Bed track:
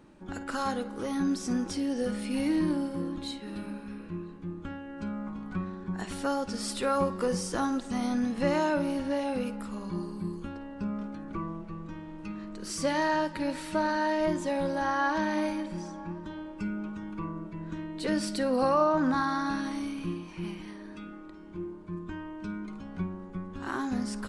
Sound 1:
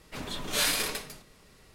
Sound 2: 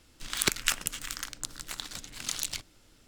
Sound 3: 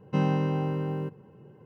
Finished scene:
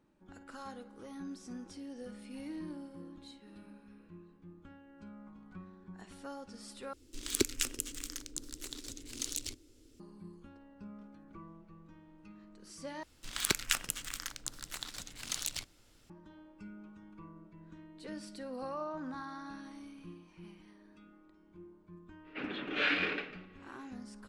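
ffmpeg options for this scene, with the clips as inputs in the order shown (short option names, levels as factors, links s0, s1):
-filter_complex "[2:a]asplit=2[s0][s1];[0:a]volume=0.168[s2];[s0]firequalizer=gain_entry='entry(110,0);entry(170,-20);entry(250,7);entry(400,6);entry(690,-13);entry(1600,-12);entry(2400,-8);entry(6300,-2);entry(14000,-5)':delay=0.05:min_phase=1[s3];[1:a]highpass=270,equalizer=f=300:t=q:w=4:g=9,equalizer=f=650:t=q:w=4:g=-6,equalizer=f=990:t=q:w=4:g=-10,equalizer=f=1500:t=q:w=4:g=4,equalizer=f=2600:t=q:w=4:g=5,lowpass=f=2800:w=0.5412,lowpass=f=2800:w=1.3066[s4];[s2]asplit=3[s5][s6][s7];[s5]atrim=end=6.934[s8];[s3]atrim=end=3.07,asetpts=PTS-STARTPTS,volume=0.841[s9];[s6]atrim=start=9.996:end=13.034[s10];[s1]atrim=end=3.07,asetpts=PTS-STARTPTS,volume=0.631[s11];[s7]atrim=start=16.096[s12];[s4]atrim=end=1.74,asetpts=PTS-STARTPTS,volume=0.944,afade=t=in:d=0.05,afade=t=out:st=1.69:d=0.05,adelay=22230[s13];[s8][s9]acrossfade=d=0.004:c1=hsin:c2=hsin[s14];[s14][s10]acrossfade=d=0.004:c1=hsin:c2=hsin[s15];[s15][s11]acrossfade=d=0.004:c1=hsin:c2=hsin[s16];[s16][s12]acrossfade=d=0.004:c1=hsin:c2=hsin[s17];[s17][s13]amix=inputs=2:normalize=0"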